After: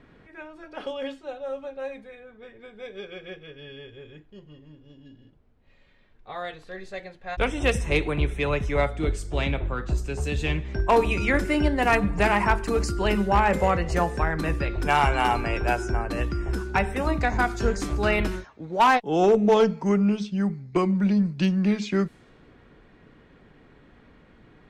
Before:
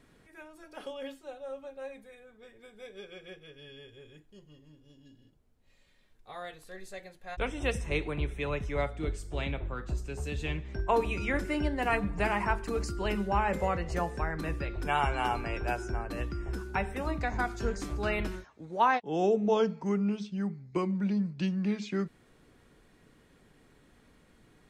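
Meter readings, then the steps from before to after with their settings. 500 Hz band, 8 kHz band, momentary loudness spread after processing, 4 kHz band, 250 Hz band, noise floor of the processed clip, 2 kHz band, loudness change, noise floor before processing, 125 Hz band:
+8.0 dB, +8.0 dB, 18 LU, +8.5 dB, +8.0 dB, -55 dBFS, +8.0 dB, +8.0 dB, -63 dBFS, +8.0 dB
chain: overloaded stage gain 20 dB; added harmonics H 2 -21 dB, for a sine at -19.5 dBFS; low-pass opened by the level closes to 2700 Hz, open at -29.5 dBFS; gain +8 dB

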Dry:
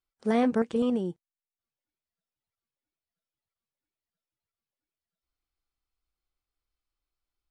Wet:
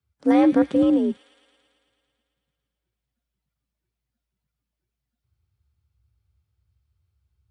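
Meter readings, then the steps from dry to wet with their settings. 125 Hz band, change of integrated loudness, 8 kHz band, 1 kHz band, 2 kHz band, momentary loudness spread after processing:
-0.5 dB, +8.0 dB, n/a, +6.0 dB, +4.0 dB, 10 LU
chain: frequency shift +57 Hz; tone controls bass +14 dB, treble -4 dB; thin delay 0.111 s, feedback 75%, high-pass 2700 Hz, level -9 dB; gain +4 dB

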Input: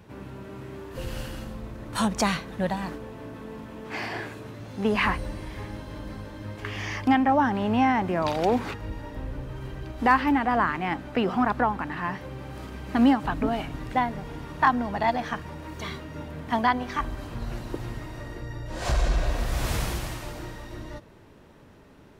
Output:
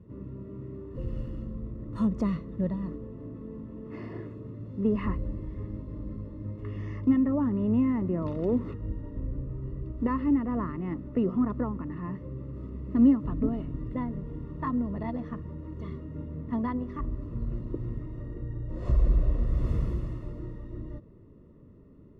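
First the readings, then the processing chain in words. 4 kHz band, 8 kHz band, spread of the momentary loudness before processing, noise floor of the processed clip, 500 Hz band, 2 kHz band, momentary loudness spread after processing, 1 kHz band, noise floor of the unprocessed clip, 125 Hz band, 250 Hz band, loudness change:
under -20 dB, n/a, 17 LU, -52 dBFS, -5.5 dB, -20.0 dB, 15 LU, -16.0 dB, -51 dBFS, +1.0 dB, 0.0 dB, -4.0 dB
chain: running mean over 56 samples; gain +1.5 dB

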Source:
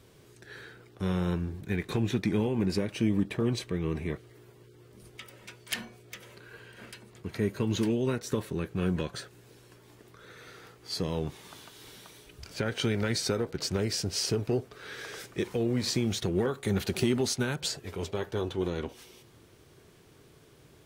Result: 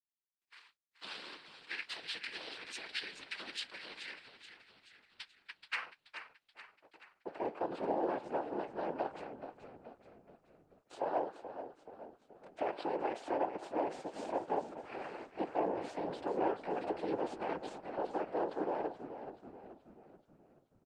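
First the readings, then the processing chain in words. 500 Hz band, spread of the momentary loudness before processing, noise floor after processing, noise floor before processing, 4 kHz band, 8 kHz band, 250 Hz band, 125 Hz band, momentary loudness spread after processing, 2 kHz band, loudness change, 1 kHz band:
-5.5 dB, 20 LU, -78 dBFS, -57 dBFS, -10.5 dB, under -20 dB, -13.0 dB, -26.5 dB, 18 LU, -5.5 dB, -9.0 dB, +5.0 dB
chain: block floating point 7-bit; gate -44 dBFS, range -49 dB; three-band isolator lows -20 dB, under 400 Hz, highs -21 dB, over 4400 Hz; in parallel at +1 dB: limiter -29.5 dBFS, peak gain reduction 10.5 dB; on the sum: ring modulator 88 Hz; band-pass sweep 3200 Hz -> 620 Hz, 5.23–6.44; soft clip -31.5 dBFS, distortion -17 dB; noise vocoder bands 8; on a send: frequency-shifting echo 0.429 s, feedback 51%, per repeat -40 Hz, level -10.5 dB; on the sum: gain +6 dB; Opus 24 kbps 48000 Hz

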